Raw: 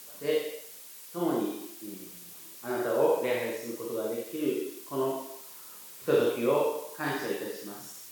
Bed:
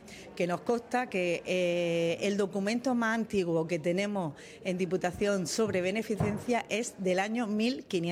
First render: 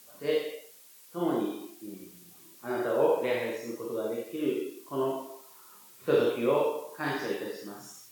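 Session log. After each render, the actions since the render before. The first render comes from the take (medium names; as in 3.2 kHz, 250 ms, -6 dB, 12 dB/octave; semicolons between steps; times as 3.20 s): noise print and reduce 7 dB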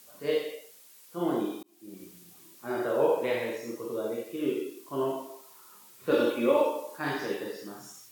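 1.63–2.03 s: fade in; 6.11–6.98 s: comb 3.5 ms, depth 76%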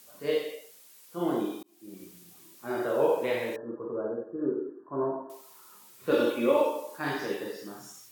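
3.56–5.30 s: brick-wall FIR low-pass 1.8 kHz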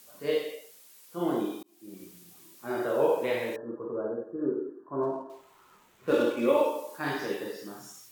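5.03–6.48 s: median filter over 9 samples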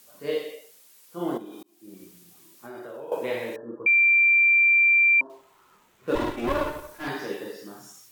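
1.37–3.12 s: compression 5:1, threshold -37 dBFS; 3.86–5.21 s: bleep 2.36 kHz -15 dBFS; 6.15–7.08 s: comb filter that takes the minimum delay 3 ms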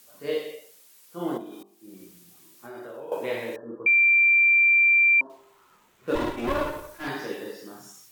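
de-hum 49.81 Hz, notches 24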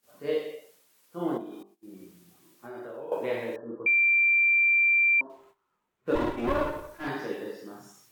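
gate -54 dBFS, range -17 dB; treble shelf 2.7 kHz -8.5 dB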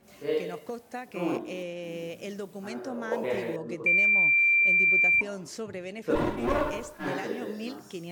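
add bed -8 dB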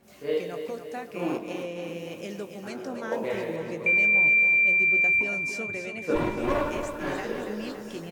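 doubling 19 ms -11 dB; feedback delay 280 ms, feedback 58%, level -8.5 dB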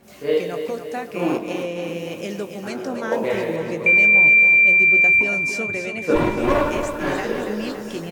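trim +7.5 dB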